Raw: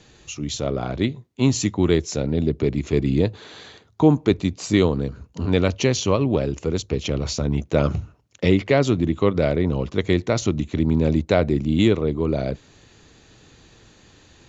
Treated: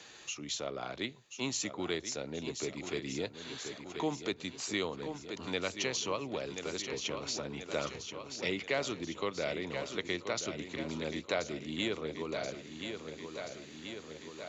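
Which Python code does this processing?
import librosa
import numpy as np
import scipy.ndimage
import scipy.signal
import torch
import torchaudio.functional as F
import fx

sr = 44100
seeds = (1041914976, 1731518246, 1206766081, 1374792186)

y = fx.highpass(x, sr, hz=1200.0, slope=6)
y = fx.echo_feedback(y, sr, ms=1030, feedback_pct=56, wet_db=-10.0)
y = fx.band_squash(y, sr, depth_pct=40)
y = y * 10.0 ** (-6.5 / 20.0)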